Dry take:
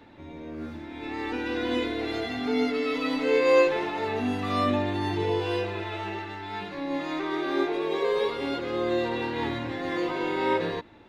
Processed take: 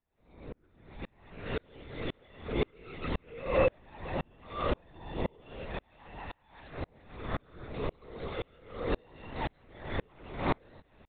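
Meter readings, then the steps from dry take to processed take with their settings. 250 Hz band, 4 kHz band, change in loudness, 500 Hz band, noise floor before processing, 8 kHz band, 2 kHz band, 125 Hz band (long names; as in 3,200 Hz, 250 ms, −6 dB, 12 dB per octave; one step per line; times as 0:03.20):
−12.5 dB, −12.0 dB, −9.5 dB, −10.0 dB, −42 dBFS, can't be measured, −11.0 dB, −3.0 dB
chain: high-pass filter 230 Hz
linear-prediction vocoder at 8 kHz whisper
tremolo with a ramp in dB swelling 1.9 Hz, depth 37 dB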